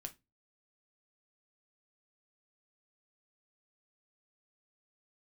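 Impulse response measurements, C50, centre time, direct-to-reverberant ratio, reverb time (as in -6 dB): 18.5 dB, 5 ms, 5.5 dB, 0.20 s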